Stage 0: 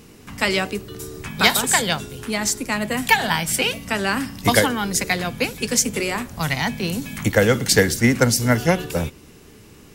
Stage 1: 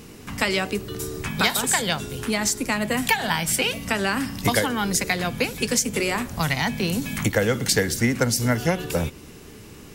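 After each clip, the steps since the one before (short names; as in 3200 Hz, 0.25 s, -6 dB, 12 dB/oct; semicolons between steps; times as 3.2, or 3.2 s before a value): compressor 2.5:1, threshold -24 dBFS, peak gain reduction 10 dB; gain +3 dB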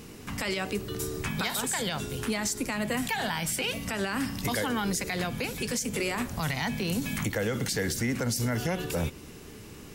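limiter -17.5 dBFS, peak gain reduction 10.5 dB; gain -2.5 dB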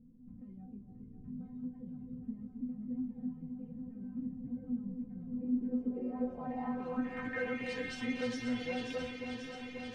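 metallic resonator 250 Hz, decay 0.22 s, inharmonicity 0.002; echo with dull and thin repeats by turns 0.268 s, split 820 Hz, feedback 88%, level -6 dB; low-pass sweep 180 Hz -> 3300 Hz, 5.24–7.9; gain +1 dB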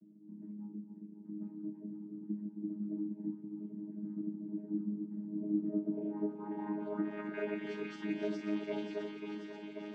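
chord vocoder bare fifth, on G#3; gain +1 dB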